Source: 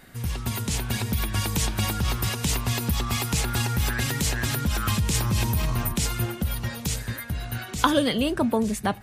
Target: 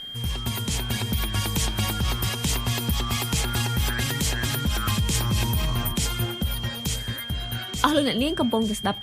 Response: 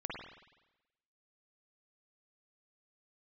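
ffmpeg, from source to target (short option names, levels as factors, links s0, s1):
-af "aeval=exprs='val(0)+0.02*sin(2*PI*3200*n/s)':c=same"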